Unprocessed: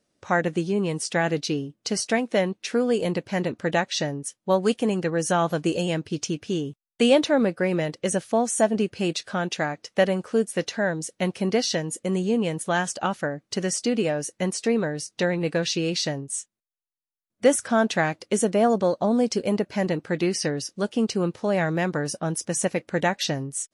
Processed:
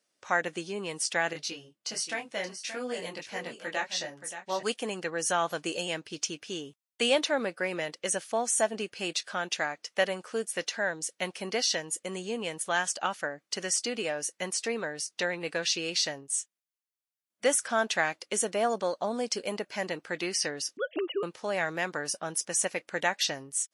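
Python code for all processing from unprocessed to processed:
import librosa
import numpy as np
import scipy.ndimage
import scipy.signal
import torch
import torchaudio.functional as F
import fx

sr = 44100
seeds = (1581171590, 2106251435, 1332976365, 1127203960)

y = fx.chain(x, sr, fx.notch(hz=440.0, q=9.8),
    fx.echo_single(ms=576, db=-10.5),
    fx.detune_double(cents=18), at=(1.33, 4.63))
y = fx.chain(y, sr, fx.sine_speech(),
    fx.tilt_eq(slope=-1.5), at=(20.77, 21.23))
y = fx.highpass(y, sr, hz=1200.0, slope=6)
y = fx.notch(y, sr, hz=3900.0, q=30.0)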